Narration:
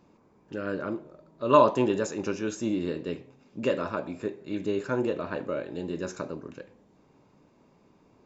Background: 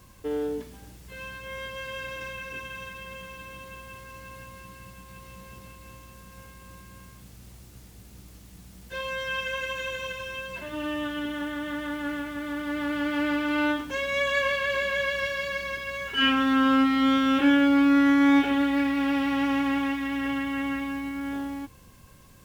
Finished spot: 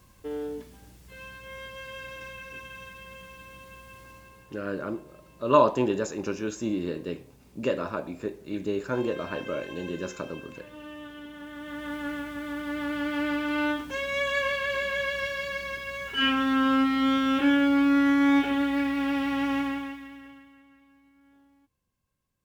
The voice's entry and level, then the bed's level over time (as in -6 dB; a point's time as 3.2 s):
4.00 s, -0.5 dB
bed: 4.08 s -4.5 dB
4.48 s -11.5 dB
11.36 s -11.5 dB
11.94 s -2 dB
19.6 s -2 dB
20.66 s -28.5 dB